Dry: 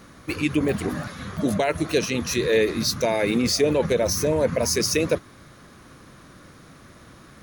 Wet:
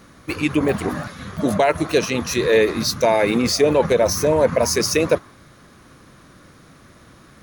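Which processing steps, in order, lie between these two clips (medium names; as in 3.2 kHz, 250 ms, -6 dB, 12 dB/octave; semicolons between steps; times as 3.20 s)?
in parallel at -11 dB: crossover distortion -34.5 dBFS; on the sum: dynamic bell 920 Hz, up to +7 dB, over -35 dBFS, Q 0.87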